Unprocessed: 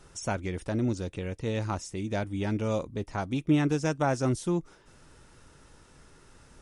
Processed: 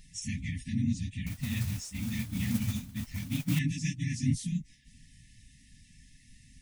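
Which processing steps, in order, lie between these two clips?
phase scrambler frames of 50 ms; brick-wall FIR band-stop 280–1700 Hz; 1.26–3.59 modulation noise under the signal 14 dB

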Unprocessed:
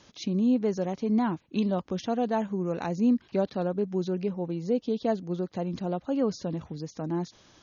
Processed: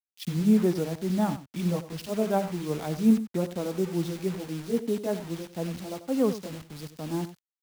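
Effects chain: gliding pitch shift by -3 st ending unshifted; high shelf 3900 Hz -4.5 dB; bit-crush 7-bit; on a send: echo 93 ms -11.5 dB; on the sum: three-band expander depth 70%; gain +1 dB

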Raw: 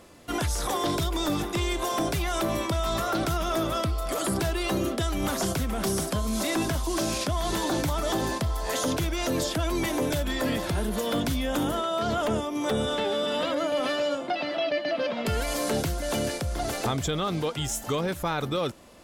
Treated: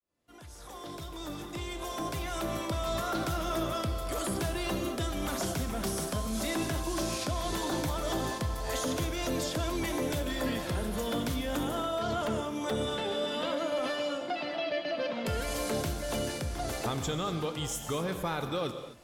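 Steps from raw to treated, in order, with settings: opening faded in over 2.98 s; non-linear reverb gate 0.28 s flat, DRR 7 dB; gain -5.5 dB

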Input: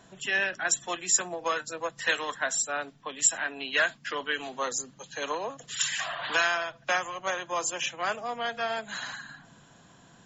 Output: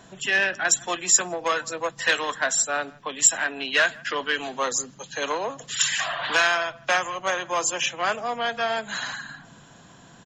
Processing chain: speakerphone echo 0.16 s, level -25 dB; core saturation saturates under 3000 Hz; gain +6 dB

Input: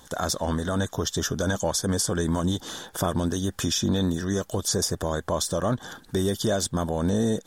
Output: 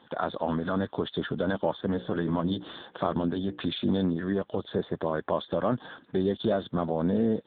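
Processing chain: HPF 150 Hz 12 dB/oct; 1.86–3.72 notches 60/120/180/240/300/360/420/480/540 Hz; AMR-NB 6.7 kbps 8000 Hz

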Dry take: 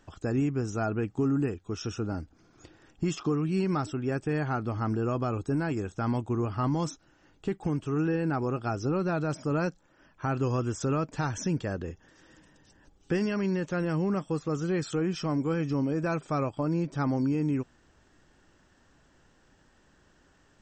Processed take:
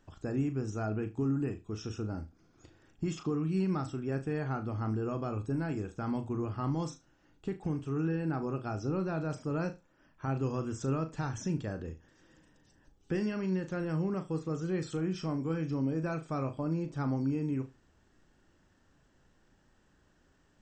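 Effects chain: low shelf 320 Hz +4.5 dB; notches 60/120 Hz; flutter echo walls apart 6.4 m, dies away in 0.24 s; gain -7.5 dB

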